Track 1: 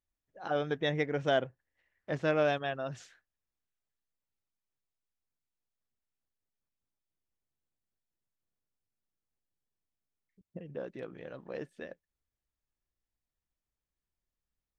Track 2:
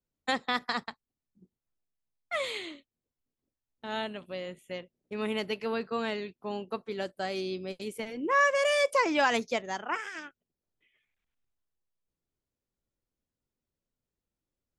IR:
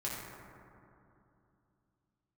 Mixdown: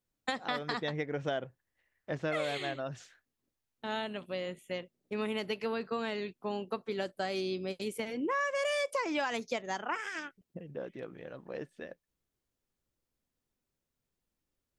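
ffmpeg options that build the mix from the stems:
-filter_complex "[0:a]volume=-0.5dB[a];[1:a]highpass=76,volume=1.5dB[b];[a][b]amix=inputs=2:normalize=0,acompressor=threshold=-30dB:ratio=6"

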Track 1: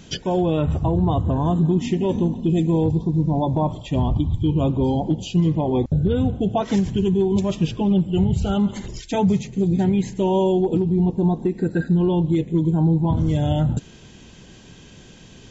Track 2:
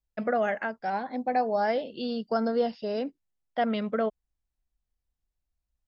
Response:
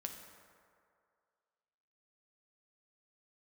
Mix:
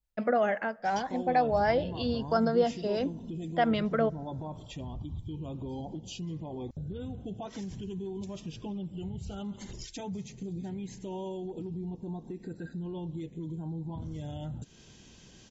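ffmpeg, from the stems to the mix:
-filter_complex "[0:a]equalizer=f=5.5k:t=o:w=0.98:g=7,alimiter=limit=-20.5dB:level=0:latency=1:release=201,adelay=850,volume=-10.5dB[a];[1:a]acrossover=split=620[b][c];[b]aeval=exprs='val(0)*(1-0.5/2+0.5/2*cos(2*PI*6.2*n/s))':c=same[d];[c]aeval=exprs='val(0)*(1-0.5/2-0.5/2*cos(2*PI*6.2*n/s))':c=same[e];[d][e]amix=inputs=2:normalize=0,volume=2dB,asplit=2[f][g];[g]volume=-19dB[h];[2:a]atrim=start_sample=2205[i];[h][i]afir=irnorm=-1:irlink=0[j];[a][f][j]amix=inputs=3:normalize=0"

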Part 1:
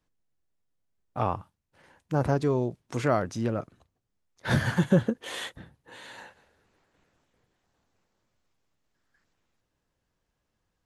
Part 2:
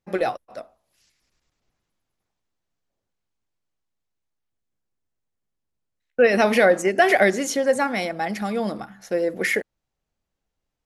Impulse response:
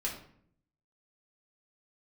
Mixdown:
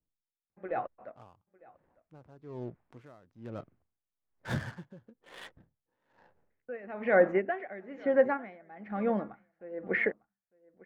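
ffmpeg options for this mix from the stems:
-filter_complex "[0:a]adynamicsmooth=sensitivity=7.5:basefreq=650,volume=-8.5dB[a];[1:a]lowpass=f=2.1k:w=0.5412,lowpass=f=2.1k:w=1.3066,agate=range=-33dB:threshold=-44dB:ratio=3:detection=peak,acompressor=mode=upward:threshold=-35dB:ratio=2.5,adelay=500,volume=-3.5dB,asplit=2[b][c];[c]volume=-23dB,aecho=0:1:902:1[d];[a][b][d]amix=inputs=3:normalize=0,aeval=exprs='val(0)*pow(10,-23*(0.5-0.5*cos(2*PI*1.1*n/s))/20)':c=same"

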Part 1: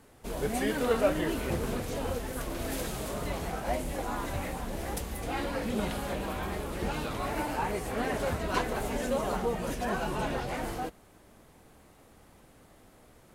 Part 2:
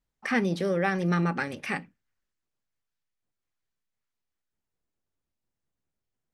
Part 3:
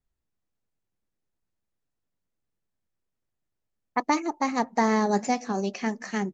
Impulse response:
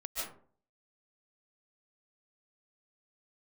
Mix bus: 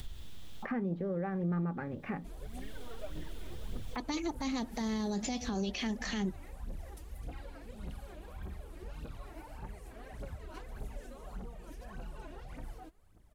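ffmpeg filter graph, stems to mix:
-filter_complex "[0:a]acompressor=threshold=-41dB:ratio=1.5,aphaser=in_gain=1:out_gain=1:delay=3.3:decay=0.65:speed=1.7:type=triangular,adelay=2000,volume=-17dB[a];[1:a]lowpass=1.1k,adelay=400,volume=-15dB[b];[2:a]equalizer=f=3.4k:t=o:w=0.6:g=15,acrossover=split=370|3000[c][d][e];[d]acompressor=threshold=-31dB:ratio=6[f];[c][f][e]amix=inputs=3:normalize=0,volume=1dB[g];[b][g]amix=inputs=2:normalize=0,acompressor=mode=upward:threshold=-29dB:ratio=2.5,alimiter=limit=-21.5dB:level=0:latency=1:release=17,volume=0dB[h];[a][h]amix=inputs=2:normalize=0,lowshelf=f=130:g=12,alimiter=level_in=2dB:limit=-24dB:level=0:latency=1:release=160,volume=-2dB"

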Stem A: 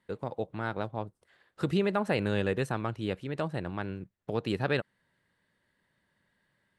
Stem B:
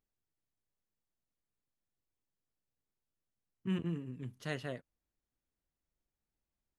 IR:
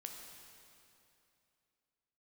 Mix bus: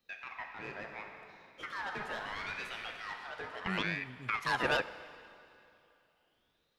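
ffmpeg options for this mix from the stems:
-filter_complex "[0:a]equalizer=f=1.1k:t=o:w=0.24:g=-6.5,asplit=2[a][b];[b]highpass=f=720:p=1,volume=22dB,asoftclip=type=tanh:threshold=-15.5dB[c];[a][c]amix=inputs=2:normalize=0,lowpass=f=2.5k:p=1,volume=-6dB,aeval=exprs='val(0)*sin(2*PI*1600*n/s+1600*0.35/0.74*sin(2*PI*0.74*n/s))':c=same,volume=-5dB,asplit=2[d][e];[e]volume=-4dB[f];[1:a]highshelf=f=6k:g=11,volume=-5dB,asplit=2[g][h];[h]apad=whole_len=299369[i];[d][i]sidechaingate=range=-33dB:threshold=-53dB:ratio=16:detection=peak[j];[2:a]atrim=start_sample=2205[k];[f][k]afir=irnorm=-1:irlink=0[l];[j][g][l]amix=inputs=3:normalize=0"

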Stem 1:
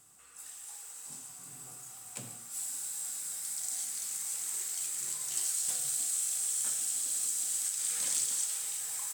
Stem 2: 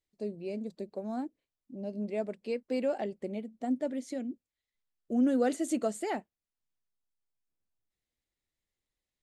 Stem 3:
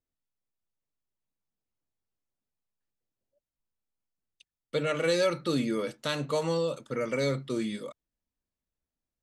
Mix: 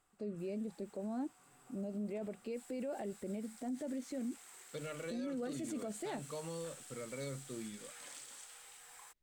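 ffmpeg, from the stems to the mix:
-filter_complex "[0:a]bass=f=250:g=-14,treble=f=4k:g=-12,volume=-5.5dB[a];[1:a]bandreject=f=740:w=22,volume=-1dB[b];[2:a]volume=-15.5dB[c];[a][b]amix=inputs=2:normalize=0,equalizer=f=10k:t=o:w=2.7:g=-5,alimiter=level_in=4.5dB:limit=-24dB:level=0:latency=1:release=19,volume=-4.5dB,volume=0dB[d];[c][d]amix=inputs=2:normalize=0,lowshelf=f=96:g=11,alimiter=level_in=9.5dB:limit=-24dB:level=0:latency=1:release=52,volume=-9.5dB"

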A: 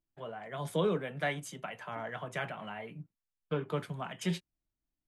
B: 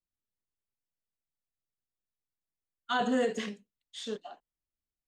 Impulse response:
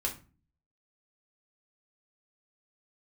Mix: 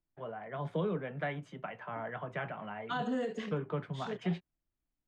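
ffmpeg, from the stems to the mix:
-filter_complex "[0:a]lowpass=2k,volume=0.5dB[a];[1:a]aemphasis=mode=reproduction:type=75fm,volume=-3.5dB[b];[a][b]amix=inputs=2:normalize=0,acrossover=split=190|3000[c][d][e];[d]acompressor=threshold=-33dB:ratio=3[f];[c][f][e]amix=inputs=3:normalize=0"

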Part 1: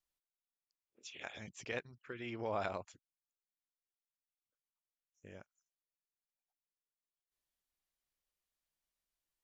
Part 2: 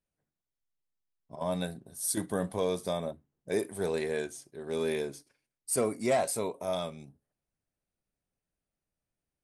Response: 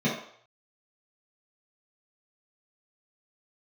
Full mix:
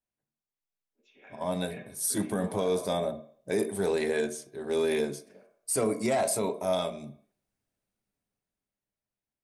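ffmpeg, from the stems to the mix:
-filter_complex "[0:a]acrossover=split=290 2900:gain=0.0794 1 0.0891[a][b][c];[a][b][c]amix=inputs=3:normalize=0,acrossover=split=1600[d][e];[d]aeval=exprs='val(0)*(1-0.7/2+0.7/2*cos(2*PI*4.3*n/s))':c=same[f];[e]aeval=exprs='val(0)*(1-0.7/2-0.7/2*cos(2*PI*4.3*n/s))':c=same[g];[f][g]amix=inputs=2:normalize=0,volume=-5.5dB,asplit=2[h][i];[i]volume=-7dB[j];[1:a]dynaudnorm=f=220:g=13:m=11dB,lowshelf=f=150:g=-4.5,volume=-6dB,asplit=2[k][l];[l]volume=-22.5dB[m];[2:a]atrim=start_sample=2205[n];[j][m]amix=inputs=2:normalize=0[o];[o][n]afir=irnorm=-1:irlink=0[p];[h][k][p]amix=inputs=3:normalize=0,alimiter=limit=-18.5dB:level=0:latency=1:release=22"

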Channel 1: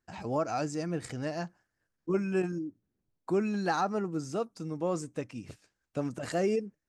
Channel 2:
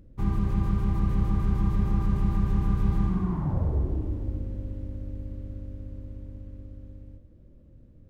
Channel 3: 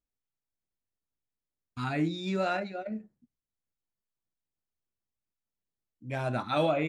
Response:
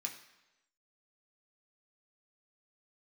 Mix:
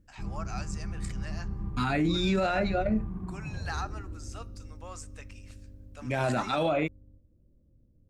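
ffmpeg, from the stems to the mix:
-filter_complex "[0:a]highpass=1.2k,volume=-2.5dB,asplit=2[a][b];[b]volume=-10.5dB[c];[1:a]adynamicsmooth=sensitivity=1.5:basefreq=930,volume=-10.5dB[d];[2:a]dynaudnorm=f=200:g=9:m=7dB,highpass=f=130:w=0.5412,highpass=f=130:w=1.3066,volume=2.5dB[e];[3:a]atrim=start_sample=2205[f];[c][f]afir=irnorm=-1:irlink=0[g];[a][d][e][g]amix=inputs=4:normalize=0,alimiter=limit=-19dB:level=0:latency=1:release=19"

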